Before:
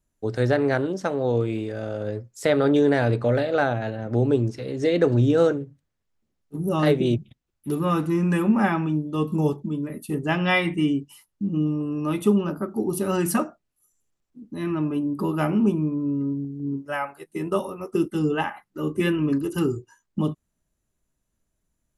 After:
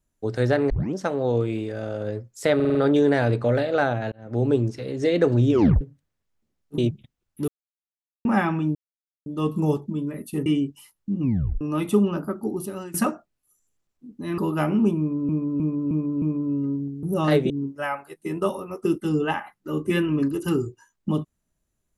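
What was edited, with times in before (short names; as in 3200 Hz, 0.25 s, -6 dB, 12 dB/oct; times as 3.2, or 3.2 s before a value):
0.7 tape start 0.25 s
2.55 stutter 0.05 s, 5 plays
3.92–4.27 fade in
5.31 tape stop 0.30 s
6.58–7.05 move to 16.6
7.75–8.52 mute
9.02 insert silence 0.51 s
10.22–10.79 cut
11.54 tape stop 0.40 s
12.67–13.27 fade out, to -21.5 dB
14.71–15.19 cut
15.79–16.1 loop, 5 plays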